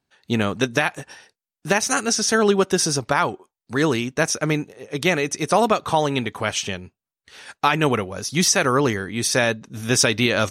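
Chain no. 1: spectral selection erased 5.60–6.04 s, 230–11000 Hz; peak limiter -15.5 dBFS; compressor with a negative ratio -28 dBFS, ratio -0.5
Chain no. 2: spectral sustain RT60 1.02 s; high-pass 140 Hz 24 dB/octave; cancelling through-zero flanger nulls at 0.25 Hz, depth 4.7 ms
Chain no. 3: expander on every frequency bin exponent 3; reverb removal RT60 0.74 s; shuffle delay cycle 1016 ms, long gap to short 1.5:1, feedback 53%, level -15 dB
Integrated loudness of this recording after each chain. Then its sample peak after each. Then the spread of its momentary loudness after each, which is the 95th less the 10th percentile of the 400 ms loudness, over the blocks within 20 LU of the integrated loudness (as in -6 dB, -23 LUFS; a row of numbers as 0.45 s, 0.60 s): -30.0 LUFS, -20.0 LUFS, -28.0 LUFS; -12.5 dBFS, -2.5 dBFS, -7.5 dBFS; 9 LU, 9 LU, 18 LU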